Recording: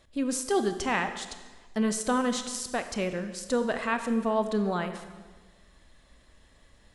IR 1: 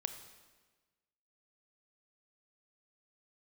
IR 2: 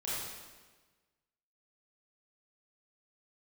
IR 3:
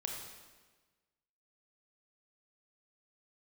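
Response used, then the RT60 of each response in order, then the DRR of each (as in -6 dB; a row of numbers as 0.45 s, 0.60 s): 1; 1.3 s, 1.3 s, 1.3 s; 8.0 dB, -9.5 dB, 0.5 dB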